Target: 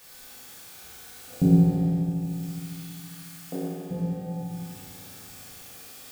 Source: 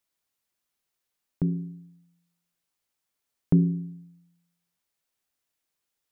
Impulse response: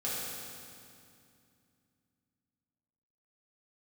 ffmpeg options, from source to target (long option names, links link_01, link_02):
-filter_complex "[0:a]aeval=exprs='val(0)+0.5*0.0266*sgn(val(0))':channel_layout=same,asettb=1/sr,asplit=3[link_01][link_02][link_03];[link_01]atrim=end=1.844[link_04];[link_02]atrim=start=1.84:end=3.91,asetpts=PTS-STARTPTS,afade=type=in:duration=0.004:curve=qsin,afade=type=out:start_time=2.066:duration=0.004:curve=qsin,highpass=700[link_05];[link_03]atrim=start=3.906[link_06];[link_04][link_05]acrossfade=duration=0.004:curve1=hsin:curve2=qsin[link_07];[link_07][link_06]acrossfade=duration=0.004:curve1=qsin:curve2=hsin,afwtdn=0.0112[link_08];[1:a]atrim=start_sample=2205[link_09];[link_08][link_09]afir=irnorm=-1:irlink=0,volume=4dB"